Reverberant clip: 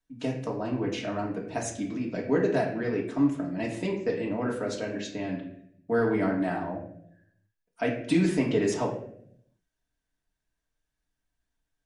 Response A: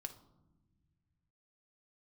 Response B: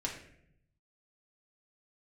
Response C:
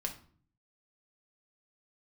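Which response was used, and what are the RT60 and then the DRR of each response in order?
B; non-exponential decay, 0.70 s, 0.50 s; 6.5, −2.5, 2.0 decibels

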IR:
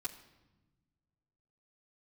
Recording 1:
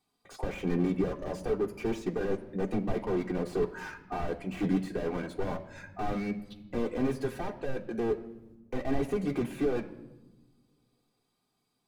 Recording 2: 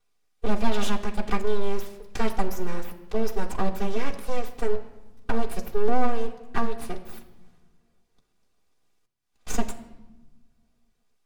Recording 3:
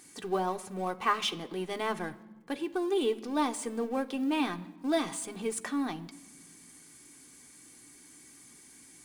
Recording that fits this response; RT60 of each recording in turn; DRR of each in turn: 2; non-exponential decay, non-exponential decay, non-exponential decay; 0.0, −8.5, 5.0 decibels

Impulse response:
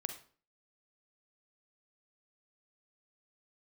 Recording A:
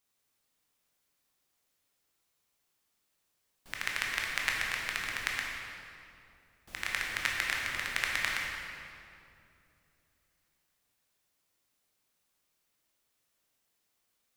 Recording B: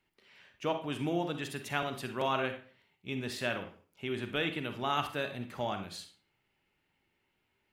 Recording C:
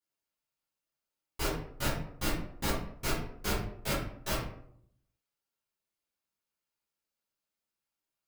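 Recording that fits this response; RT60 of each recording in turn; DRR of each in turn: B; 2.7, 0.45, 0.65 seconds; −2.5, 6.5, −11.5 decibels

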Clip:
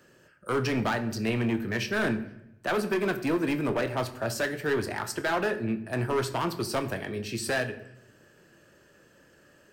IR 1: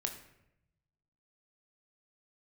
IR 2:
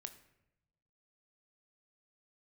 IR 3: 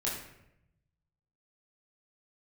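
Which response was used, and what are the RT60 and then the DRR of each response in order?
2; 0.85, 0.85, 0.80 seconds; 3.5, 8.5, −6.0 decibels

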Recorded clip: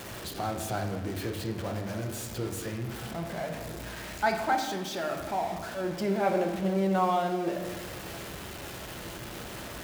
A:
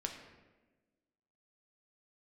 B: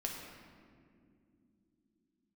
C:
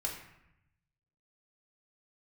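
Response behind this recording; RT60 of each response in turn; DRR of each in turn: A; 1.2 s, non-exponential decay, 0.80 s; 2.5, −0.5, −2.5 decibels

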